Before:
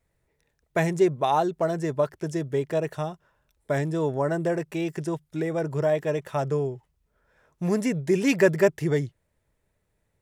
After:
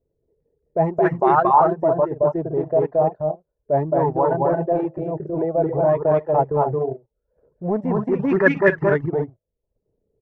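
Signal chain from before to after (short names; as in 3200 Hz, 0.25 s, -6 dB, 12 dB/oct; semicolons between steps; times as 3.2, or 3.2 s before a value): 4.23–5.23 de-hum 47.25 Hz, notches 19; on a send: loudspeakers at several distances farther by 76 m -2 dB, 94 m -7 dB; on the sum: transient shaper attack -9 dB, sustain -5 dB; in parallel at -7 dB: companded quantiser 4-bit; on the sum: reverb removal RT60 0.53 s; envelope low-pass 440–2200 Hz up, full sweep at -11.5 dBFS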